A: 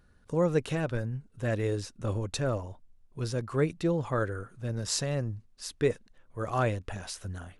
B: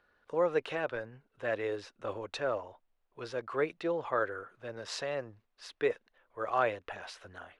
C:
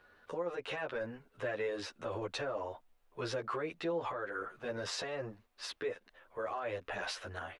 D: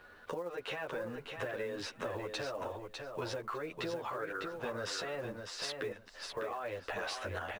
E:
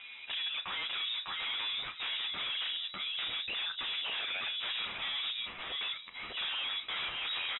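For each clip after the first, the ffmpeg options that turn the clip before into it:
-filter_complex "[0:a]acrossover=split=400 3900:gain=0.0794 1 0.0891[s0][s1][s2];[s0][s1][s2]amix=inputs=3:normalize=0,volume=1.19"
-filter_complex "[0:a]acompressor=threshold=0.0178:ratio=4,alimiter=level_in=3.98:limit=0.0631:level=0:latency=1:release=36,volume=0.251,asplit=2[s0][s1];[s1]adelay=10.6,afreqshift=1.1[s2];[s0][s2]amix=inputs=2:normalize=1,volume=3.16"
-filter_complex "[0:a]acompressor=threshold=0.00708:ratio=12,acrusher=bits=7:mode=log:mix=0:aa=0.000001,asplit=2[s0][s1];[s1]aecho=0:1:602|1204|1806:0.531|0.0796|0.0119[s2];[s0][s2]amix=inputs=2:normalize=0,volume=2.24"
-filter_complex "[0:a]aeval=exprs='0.0562*sin(PI/2*4.47*val(0)/0.0562)':c=same,asplit=2[s0][s1];[s1]adelay=34,volume=0.224[s2];[s0][s2]amix=inputs=2:normalize=0,lowpass=f=3300:t=q:w=0.5098,lowpass=f=3300:t=q:w=0.6013,lowpass=f=3300:t=q:w=0.9,lowpass=f=3300:t=q:w=2.563,afreqshift=-3900,volume=0.398"

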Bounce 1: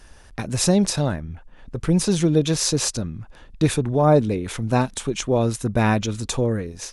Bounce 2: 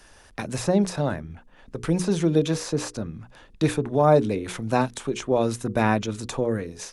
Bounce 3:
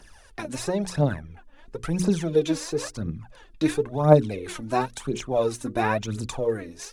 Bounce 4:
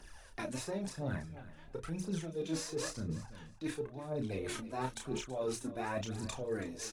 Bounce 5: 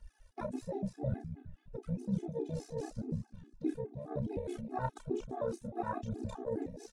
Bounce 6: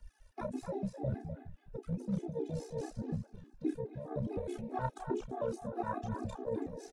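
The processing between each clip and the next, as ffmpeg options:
-filter_complex "[0:a]lowshelf=f=130:g=-9.5,bandreject=f=60:t=h:w=6,bandreject=f=120:t=h:w=6,bandreject=f=180:t=h:w=6,bandreject=f=240:t=h:w=6,bandreject=f=300:t=h:w=6,bandreject=f=360:t=h:w=6,bandreject=f=420:t=h:w=6,bandreject=f=480:t=h:w=6,acrossover=split=190|2000[s0][s1][s2];[s2]acompressor=threshold=0.0178:ratio=6[s3];[s0][s1][s3]amix=inputs=3:normalize=0"
-af "aphaser=in_gain=1:out_gain=1:delay=3.7:decay=0.67:speed=0.97:type=triangular,volume=0.631"
-filter_complex "[0:a]areverse,acompressor=threshold=0.0316:ratio=16,areverse,asplit=2[s0][s1];[s1]adelay=31,volume=0.562[s2];[s0][s2]amix=inputs=2:normalize=0,aecho=1:1:328|656:0.168|0.0302,volume=0.562"
-af "tremolo=f=65:d=0.667,afwtdn=0.00708,afftfilt=real='re*gt(sin(2*PI*4.8*pts/sr)*(1-2*mod(floor(b*sr/1024/220),2)),0)':imag='im*gt(sin(2*PI*4.8*pts/sr)*(1-2*mod(floor(b*sr/1024/220),2)),0)':win_size=1024:overlap=0.75,volume=2.51"
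-filter_complex "[0:a]acrossover=split=310|420|3800[s0][s1][s2][s3];[s0]volume=29.9,asoftclip=hard,volume=0.0335[s4];[s2]aecho=1:1:252:0.473[s5];[s4][s1][s5][s3]amix=inputs=4:normalize=0"

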